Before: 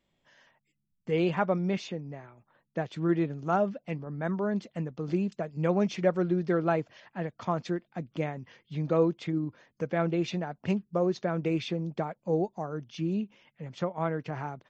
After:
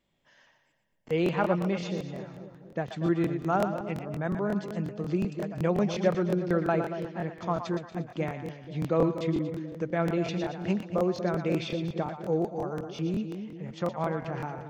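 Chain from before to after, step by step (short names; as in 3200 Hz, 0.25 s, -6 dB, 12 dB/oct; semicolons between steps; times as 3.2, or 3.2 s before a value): split-band echo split 620 Hz, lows 0.243 s, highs 0.117 s, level -8 dB; crackling interface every 0.18 s, samples 1024, repeat, from 0.88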